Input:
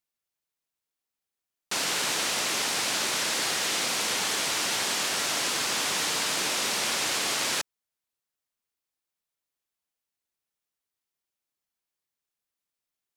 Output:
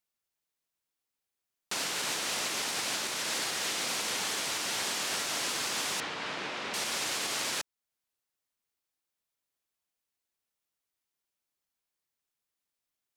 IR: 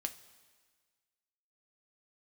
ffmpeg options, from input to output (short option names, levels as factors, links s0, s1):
-filter_complex "[0:a]alimiter=limit=0.075:level=0:latency=1:release=328,asettb=1/sr,asplit=3[s0][s1][s2];[s0]atrim=end=6.004[s3];[s1]atrim=start=6:end=6.74,asetpts=PTS-STARTPTS,afade=t=in:d=0.004:c=qsin,afade=t=out:st=0.736:d=0.004:c=qsin,lowpass=2800[s4];[s2]atrim=start=6.736[s5];[s3][s4]acrossfade=d=0.004:c1=hsin:c2=qsin[s6];[s6][s5]acrossfade=d=0.004:c1=qsin:c2=hsin"